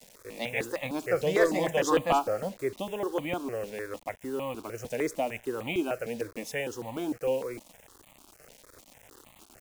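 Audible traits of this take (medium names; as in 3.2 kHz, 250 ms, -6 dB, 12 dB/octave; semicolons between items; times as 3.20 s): a quantiser's noise floor 8-bit, dither none; notches that jump at a steady rate 6.6 Hz 330–1500 Hz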